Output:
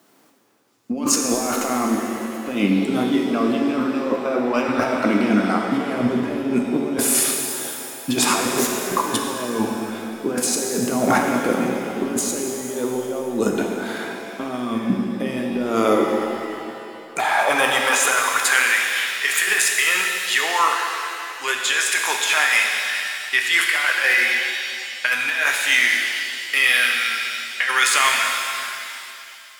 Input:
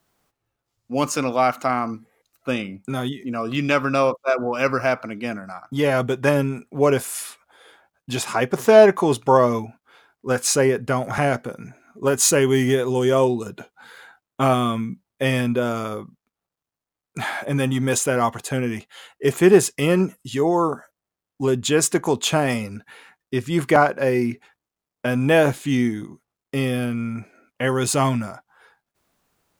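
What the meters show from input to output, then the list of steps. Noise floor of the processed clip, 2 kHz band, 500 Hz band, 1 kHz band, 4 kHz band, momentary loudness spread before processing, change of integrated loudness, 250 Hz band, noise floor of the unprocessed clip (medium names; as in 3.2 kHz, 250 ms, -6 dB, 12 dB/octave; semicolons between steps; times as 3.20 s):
-38 dBFS, +9.5 dB, -5.0 dB, +1.0 dB, +8.5 dB, 14 LU, +1.0 dB, +1.0 dB, under -85 dBFS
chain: high-pass sweep 260 Hz -> 1.8 kHz, 15.64–18.75 s; compressor with a negative ratio -27 dBFS, ratio -1; pitch-shifted reverb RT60 2.7 s, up +7 st, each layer -8 dB, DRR 1 dB; trim +3.5 dB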